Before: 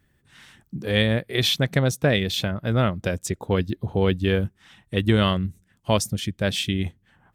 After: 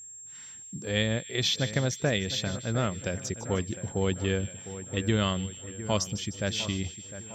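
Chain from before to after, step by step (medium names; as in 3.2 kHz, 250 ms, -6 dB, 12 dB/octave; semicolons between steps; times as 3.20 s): resonant high shelf 7.7 kHz -8.5 dB, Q 3; two-band feedback delay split 2.2 kHz, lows 705 ms, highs 153 ms, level -13 dB; whistle 7.5 kHz -36 dBFS; trim -7 dB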